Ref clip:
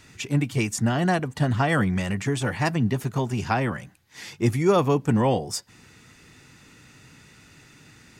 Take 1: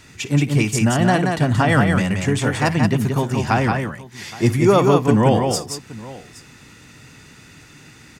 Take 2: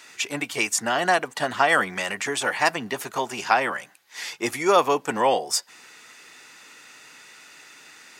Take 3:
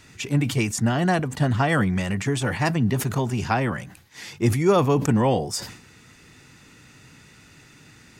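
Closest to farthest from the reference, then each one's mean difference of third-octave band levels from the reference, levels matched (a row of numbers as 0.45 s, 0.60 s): 3, 1, 2; 1.0 dB, 4.0 dB, 7.5 dB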